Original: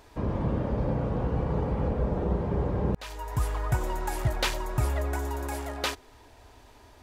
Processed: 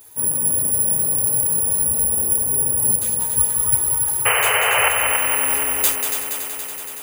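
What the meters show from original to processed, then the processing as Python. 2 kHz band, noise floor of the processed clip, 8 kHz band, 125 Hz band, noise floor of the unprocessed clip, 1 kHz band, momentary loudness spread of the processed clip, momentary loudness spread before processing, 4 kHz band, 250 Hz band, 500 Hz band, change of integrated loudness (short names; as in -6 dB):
+16.5 dB, -32 dBFS, +28.5 dB, -6.5 dB, -54 dBFS, +9.0 dB, 5 LU, 4 LU, +12.5 dB, -4.5 dB, +2.5 dB, +14.0 dB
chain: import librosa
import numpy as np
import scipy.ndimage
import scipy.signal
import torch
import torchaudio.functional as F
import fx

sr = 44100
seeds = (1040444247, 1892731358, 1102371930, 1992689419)

p1 = fx.high_shelf(x, sr, hz=5500.0, db=7.0)
p2 = (np.kron(scipy.signal.resample_poly(p1, 1, 4), np.eye(4)[0]) * 4)[:len(p1)]
p3 = fx.chorus_voices(p2, sr, voices=2, hz=0.76, base_ms=10, depth_ms=2.8, mix_pct=50)
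p4 = fx.high_shelf(p3, sr, hz=2500.0, db=9.5)
p5 = fx.spec_paint(p4, sr, seeds[0], shape='noise', start_s=4.25, length_s=0.64, low_hz=400.0, high_hz=3100.0, level_db=-9.0)
p6 = fx.rider(p5, sr, range_db=10, speed_s=0.5)
p7 = scipy.signal.sosfilt(scipy.signal.butter(2, 76.0, 'highpass', fs=sr, output='sos'), p6)
p8 = fx.notch(p7, sr, hz=4200.0, q=11.0)
p9 = p8 + fx.echo_heads(p8, sr, ms=94, heads='second and third', feedback_pct=73, wet_db=-7.0, dry=0)
y = p9 * librosa.db_to_amplitude(-5.5)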